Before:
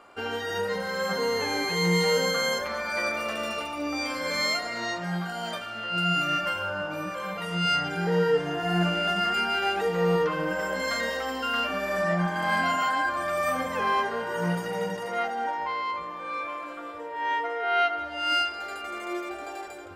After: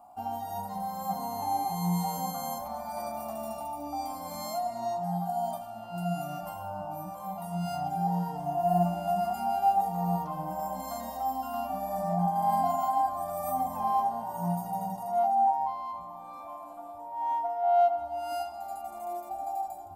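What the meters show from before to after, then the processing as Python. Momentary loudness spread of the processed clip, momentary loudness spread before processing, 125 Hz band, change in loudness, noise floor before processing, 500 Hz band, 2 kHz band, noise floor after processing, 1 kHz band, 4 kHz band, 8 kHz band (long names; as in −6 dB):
12 LU, 9 LU, −2.5 dB, −4.0 dB, −38 dBFS, −5.5 dB, −24.5 dB, −43 dBFS, +1.0 dB, −18.5 dB, −6.5 dB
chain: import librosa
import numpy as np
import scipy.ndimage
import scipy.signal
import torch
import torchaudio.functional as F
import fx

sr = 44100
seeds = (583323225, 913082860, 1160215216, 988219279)

y = fx.curve_eq(x, sr, hz=(240.0, 470.0, 740.0, 1600.0, 2300.0, 6900.0, 13000.0), db=(0, -24, 13, -25, -23, -6, 10))
y = F.gain(torch.from_numpy(y), -2.5).numpy()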